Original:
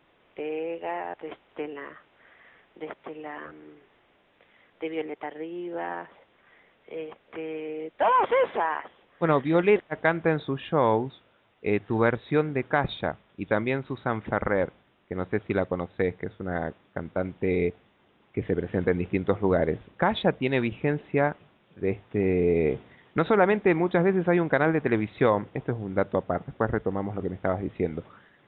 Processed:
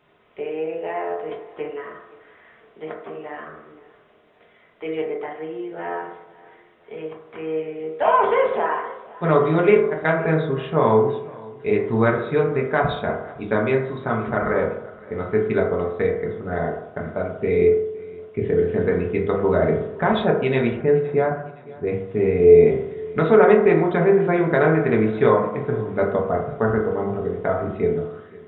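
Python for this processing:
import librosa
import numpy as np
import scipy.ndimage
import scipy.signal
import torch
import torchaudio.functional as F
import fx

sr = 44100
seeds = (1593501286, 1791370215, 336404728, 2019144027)

y = fx.high_shelf(x, sr, hz=2000.0, db=-11.0, at=(20.76, 21.87))
y = fx.echo_feedback(y, sr, ms=515, feedback_pct=42, wet_db=-21.5)
y = fx.rev_fdn(y, sr, rt60_s=0.81, lf_ratio=0.8, hf_ratio=0.3, size_ms=14.0, drr_db=-2.0)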